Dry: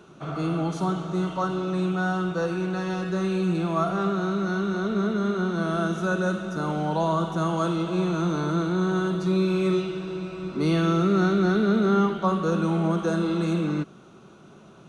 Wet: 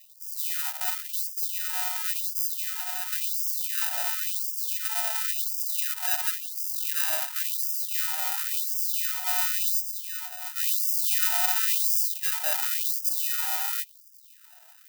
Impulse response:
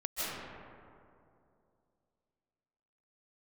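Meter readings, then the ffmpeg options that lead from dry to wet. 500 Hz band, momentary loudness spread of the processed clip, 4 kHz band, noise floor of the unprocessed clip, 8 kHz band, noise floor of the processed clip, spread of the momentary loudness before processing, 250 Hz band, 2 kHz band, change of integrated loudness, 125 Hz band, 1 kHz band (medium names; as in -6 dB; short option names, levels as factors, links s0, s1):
-23.0 dB, 7 LU, +5.5 dB, -49 dBFS, +17.0 dB, -53 dBFS, 7 LU, under -40 dB, -3.0 dB, +0.5 dB, under -40 dB, -10.0 dB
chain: -af "acrusher=samples=40:mix=1:aa=0.000001,aemphasis=mode=production:type=bsi,afftfilt=real='re*gte(b*sr/1024,590*pow(4800/590,0.5+0.5*sin(2*PI*0.94*pts/sr)))':imag='im*gte(b*sr/1024,590*pow(4800/590,0.5+0.5*sin(2*PI*0.94*pts/sr)))':win_size=1024:overlap=0.75,volume=0.631"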